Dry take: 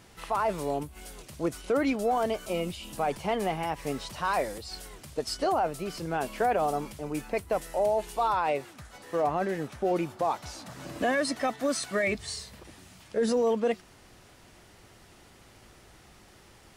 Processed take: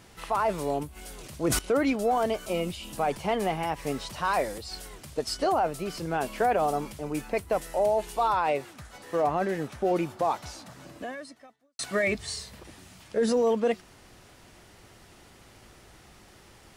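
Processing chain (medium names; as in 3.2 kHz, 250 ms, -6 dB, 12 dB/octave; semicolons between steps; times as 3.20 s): 0.94–1.59 s: decay stretcher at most 25 dB/s; 10.39–11.79 s: fade out quadratic; trim +1.5 dB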